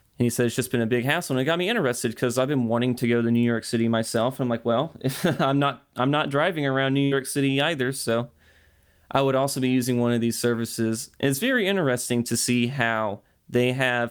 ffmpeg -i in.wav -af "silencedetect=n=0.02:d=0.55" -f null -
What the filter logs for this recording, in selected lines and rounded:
silence_start: 8.25
silence_end: 9.11 | silence_duration: 0.85